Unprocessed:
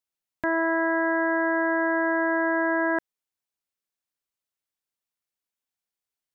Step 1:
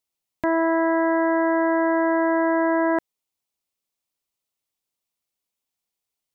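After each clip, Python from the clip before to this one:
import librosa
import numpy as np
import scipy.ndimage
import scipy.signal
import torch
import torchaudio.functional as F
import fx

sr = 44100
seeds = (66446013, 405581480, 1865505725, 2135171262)

y = fx.peak_eq(x, sr, hz=1600.0, db=-8.5, octaves=0.47)
y = y * 10.0 ** (5.0 / 20.0)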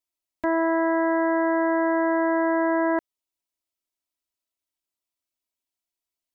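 y = x + 0.94 * np.pad(x, (int(3.1 * sr / 1000.0), 0))[:len(x)]
y = y * 10.0 ** (-7.5 / 20.0)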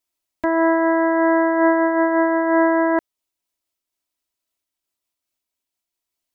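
y = fx.am_noise(x, sr, seeds[0], hz=5.7, depth_pct=55)
y = y * 10.0 ** (8.5 / 20.0)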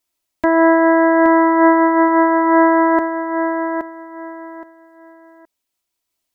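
y = fx.echo_feedback(x, sr, ms=821, feedback_pct=24, wet_db=-7.5)
y = y * 10.0 ** (5.0 / 20.0)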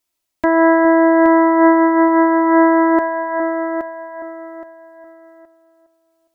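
y = fx.echo_bbd(x, sr, ms=411, stages=4096, feedback_pct=34, wet_db=-11.0)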